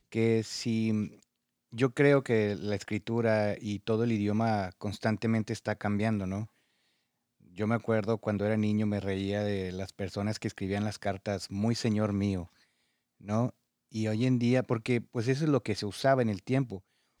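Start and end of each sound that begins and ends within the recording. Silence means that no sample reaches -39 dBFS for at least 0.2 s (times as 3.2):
1.74–6.45
7.58–12.45
13.26–13.5
13.94–16.78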